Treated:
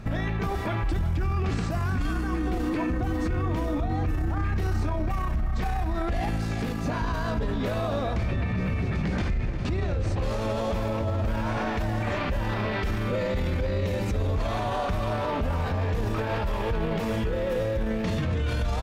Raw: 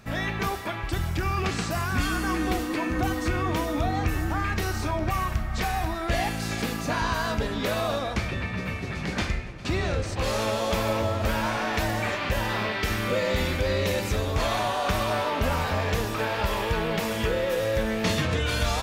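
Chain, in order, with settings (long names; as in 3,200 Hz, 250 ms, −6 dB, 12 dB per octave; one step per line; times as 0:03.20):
spectral tilt −2.5 dB per octave
brickwall limiter −24.5 dBFS, peak gain reduction 18.5 dB
single-tap delay 352 ms −15.5 dB
level +4.5 dB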